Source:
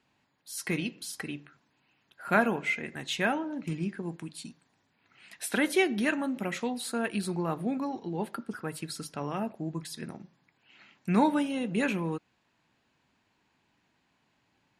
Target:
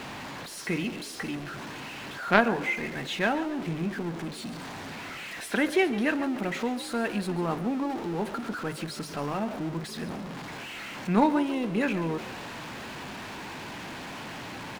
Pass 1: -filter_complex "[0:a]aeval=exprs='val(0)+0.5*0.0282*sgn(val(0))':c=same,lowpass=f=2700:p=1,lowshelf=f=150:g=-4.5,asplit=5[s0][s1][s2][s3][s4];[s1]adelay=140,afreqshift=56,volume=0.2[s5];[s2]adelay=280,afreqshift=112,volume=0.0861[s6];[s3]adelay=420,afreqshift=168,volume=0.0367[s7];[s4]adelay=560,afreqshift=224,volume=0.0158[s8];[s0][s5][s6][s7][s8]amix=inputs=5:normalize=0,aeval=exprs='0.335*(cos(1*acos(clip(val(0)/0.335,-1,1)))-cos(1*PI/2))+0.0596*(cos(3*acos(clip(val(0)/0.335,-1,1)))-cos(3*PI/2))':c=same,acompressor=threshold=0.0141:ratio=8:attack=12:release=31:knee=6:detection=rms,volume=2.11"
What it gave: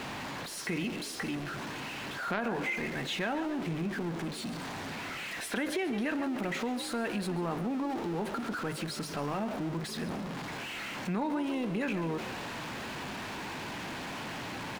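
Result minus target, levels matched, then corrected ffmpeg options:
compression: peak gain reduction +15 dB
-filter_complex "[0:a]aeval=exprs='val(0)+0.5*0.0282*sgn(val(0))':c=same,lowpass=f=2700:p=1,lowshelf=f=150:g=-4.5,asplit=5[s0][s1][s2][s3][s4];[s1]adelay=140,afreqshift=56,volume=0.2[s5];[s2]adelay=280,afreqshift=112,volume=0.0861[s6];[s3]adelay=420,afreqshift=168,volume=0.0367[s7];[s4]adelay=560,afreqshift=224,volume=0.0158[s8];[s0][s5][s6][s7][s8]amix=inputs=5:normalize=0,aeval=exprs='0.335*(cos(1*acos(clip(val(0)/0.335,-1,1)))-cos(1*PI/2))+0.0596*(cos(3*acos(clip(val(0)/0.335,-1,1)))-cos(3*PI/2))':c=same,volume=2.11"

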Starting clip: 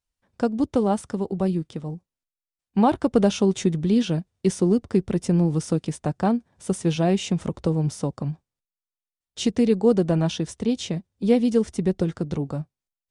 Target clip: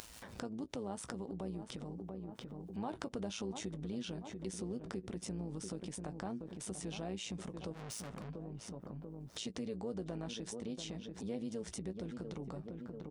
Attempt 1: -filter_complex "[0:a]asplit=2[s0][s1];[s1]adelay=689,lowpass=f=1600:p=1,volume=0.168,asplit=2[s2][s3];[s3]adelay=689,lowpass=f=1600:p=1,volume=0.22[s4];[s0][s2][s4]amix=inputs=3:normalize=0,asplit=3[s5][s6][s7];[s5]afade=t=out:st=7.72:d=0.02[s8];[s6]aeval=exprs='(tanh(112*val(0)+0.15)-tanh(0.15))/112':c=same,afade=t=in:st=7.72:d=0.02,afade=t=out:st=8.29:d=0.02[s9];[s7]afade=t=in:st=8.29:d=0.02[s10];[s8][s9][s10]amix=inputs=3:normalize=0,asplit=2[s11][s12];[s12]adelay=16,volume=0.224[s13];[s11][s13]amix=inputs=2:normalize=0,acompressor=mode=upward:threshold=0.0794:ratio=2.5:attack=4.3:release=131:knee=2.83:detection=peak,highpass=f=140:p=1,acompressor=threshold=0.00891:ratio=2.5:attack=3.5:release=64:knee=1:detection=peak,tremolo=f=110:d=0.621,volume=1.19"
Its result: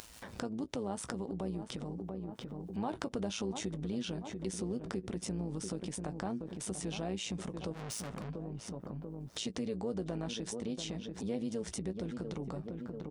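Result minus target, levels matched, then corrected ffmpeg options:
compression: peak gain reduction -4 dB
-filter_complex "[0:a]asplit=2[s0][s1];[s1]adelay=689,lowpass=f=1600:p=1,volume=0.168,asplit=2[s2][s3];[s3]adelay=689,lowpass=f=1600:p=1,volume=0.22[s4];[s0][s2][s4]amix=inputs=3:normalize=0,asplit=3[s5][s6][s7];[s5]afade=t=out:st=7.72:d=0.02[s8];[s6]aeval=exprs='(tanh(112*val(0)+0.15)-tanh(0.15))/112':c=same,afade=t=in:st=7.72:d=0.02,afade=t=out:st=8.29:d=0.02[s9];[s7]afade=t=in:st=8.29:d=0.02[s10];[s8][s9][s10]amix=inputs=3:normalize=0,asplit=2[s11][s12];[s12]adelay=16,volume=0.224[s13];[s11][s13]amix=inputs=2:normalize=0,acompressor=mode=upward:threshold=0.0794:ratio=2.5:attack=4.3:release=131:knee=2.83:detection=peak,highpass=f=140:p=1,acompressor=threshold=0.00398:ratio=2.5:attack=3.5:release=64:knee=1:detection=peak,tremolo=f=110:d=0.621,volume=1.19"

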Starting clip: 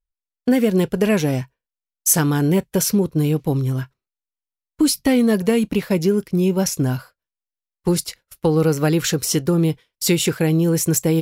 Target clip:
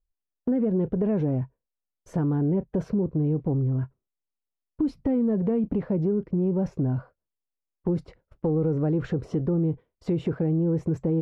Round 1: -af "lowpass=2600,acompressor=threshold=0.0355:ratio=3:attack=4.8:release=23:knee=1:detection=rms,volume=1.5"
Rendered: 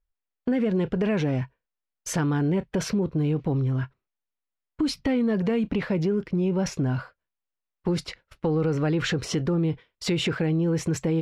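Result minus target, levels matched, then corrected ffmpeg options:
2 kHz band +15.0 dB
-af "lowpass=660,acompressor=threshold=0.0355:ratio=3:attack=4.8:release=23:knee=1:detection=rms,volume=1.5"

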